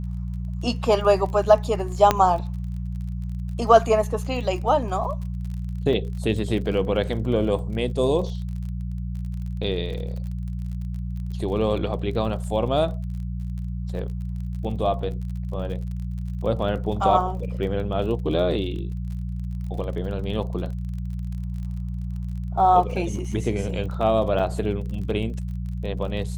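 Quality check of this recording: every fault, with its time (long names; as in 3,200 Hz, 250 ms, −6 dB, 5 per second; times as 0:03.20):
surface crackle 35 per second −34 dBFS
mains hum 60 Hz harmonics 3 −29 dBFS
0:02.11: click −4 dBFS
0:05.93: drop-out 2.5 ms
0:24.39–0:24.40: drop-out 6.6 ms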